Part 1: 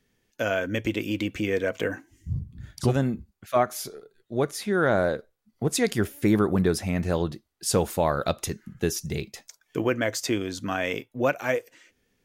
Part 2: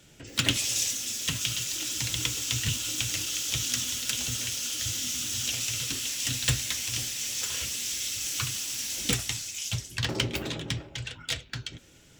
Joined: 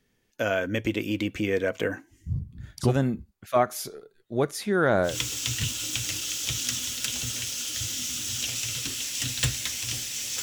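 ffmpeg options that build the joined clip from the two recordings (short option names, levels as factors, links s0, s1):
-filter_complex "[0:a]apad=whole_dur=10.42,atrim=end=10.42,atrim=end=5.18,asetpts=PTS-STARTPTS[s0];[1:a]atrim=start=2.07:end=7.47,asetpts=PTS-STARTPTS[s1];[s0][s1]acrossfade=d=0.16:c1=tri:c2=tri"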